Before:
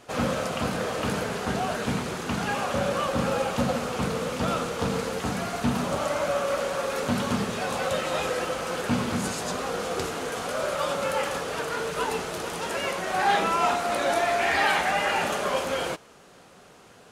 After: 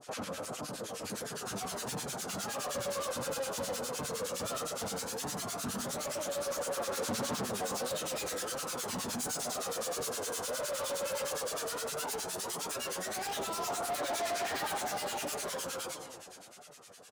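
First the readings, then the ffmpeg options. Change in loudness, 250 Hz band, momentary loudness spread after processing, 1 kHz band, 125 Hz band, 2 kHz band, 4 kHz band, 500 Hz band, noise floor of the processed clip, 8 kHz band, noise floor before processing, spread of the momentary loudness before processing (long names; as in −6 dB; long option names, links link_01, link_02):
−9.0 dB, −12.5 dB, 6 LU, −11.5 dB, −14.0 dB, −13.0 dB, −6.0 dB, −9.5 dB, −51 dBFS, +0.5 dB, −52 dBFS, 7 LU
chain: -filter_complex "[0:a]acrossover=split=1400[link_01][link_02];[link_01]aeval=exprs='val(0)*(1-1/2+1/2*cos(2*PI*9.7*n/s))':channel_layout=same[link_03];[link_02]aeval=exprs='val(0)*(1-1/2-1/2*cos(2*PI*9.7*n/s))':channel_layout=same[link_04];[link_03][link_04]amix=inputs=2:normalize=0,dynaudnorm=framelen=130:gausssize=21:maxgain=14.5dB,asplit=2[link_05][link_06];[link_06]adelay=137,lowpass=frequency=1300:poles=1,volume=-17dB,asplit=2[link_07][link_08];[link_08]adelay=137,lowpass=frequency=1300:poles=1,volume=0.5,asplit=2[link_09][link_10];[link_10]adelay=137,lowpass=frequency=1300:poles=1,volume=0.5,asplit=2[link_11][link_12];[link_12]adelay=137,lowpass=frequency=1300:poles=1,volume=0.5[link_13];[link_07][link_09][link_11][link_13]amix=inputs=4:normalize=0[link_14];[link_05][link_14]amix=inputs=2:normalize=0,flanger=delay=6.6:depth=4.3:regen=52:speed=1.5:shape=sinusoidal,bass=frequency=250:gain=-4,treble=frequency=4000:gain=10,volume=24.5dB,asoftclip=hard,volume=-24.5dB,alimiter=level_in=12dB:limit=-24dB:level=0:latency=1:release=18,volume=-12dB,adynamicequalizer=threshold=0.002:dfrequency=2300:dqfactor=1.2:tfrequency=2300:tqfactor=1.2:attack=5:release=100:ratio=0.375:range=3:mode=cutabove:tftype=bell,aphaser=in_gain=1:out_gain=1:delay=2:decay=0.29:speed=0.14:type=sinusoidal,highpass=frequency=110:poles=1,volume=2.5dB"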